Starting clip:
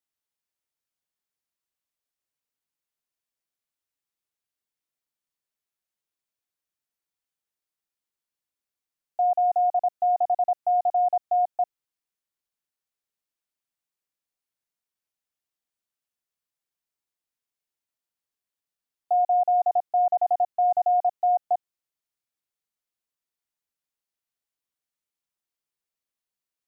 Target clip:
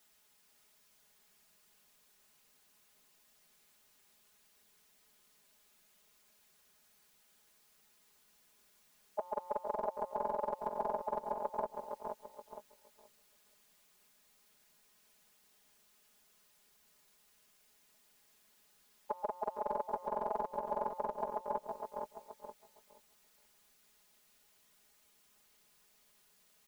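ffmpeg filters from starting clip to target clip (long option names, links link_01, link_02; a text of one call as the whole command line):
ffmpeg -i in.wav -filter_complex "[0:a]afftfilt=real='re*lt(hypot(re,im),0.0631)':imag='im*lt(hypot(re,im),0.0631)':win_size=1024:overlap=0.75,asplit=2[link_01][link_02];[link_02]aecho=0:1:460|920:0.335|0.0502[link_03];[link_01][link_03]amix=inputs=2:normalize=0,alimiter=level_in=20.5dB:limit=-24dB:level=0:latency=1:release=161,volume=-20.5dB,aecho=1:1:4.8:0.93,asplit=2[link_04][link_05];[link_05]adelay=478,lowpass=frequency=900:poles=1,volume=-4dB,asplit=2[link_06][link_07];[link_07]adelay=478,lowpass=frequency=900:poles=1,volume=0.2,asplit=2[link_08][link_09];[link_09]adelay=478,lowpass=frequency=900:poles=1,volume=0.2[link_10];[link_06][link_08][link_10]amix=inputs=3:normalize=0[link_11];[link_04][link_11]amix=inputs=2:normalize=0,volume=17.5dB" out.wav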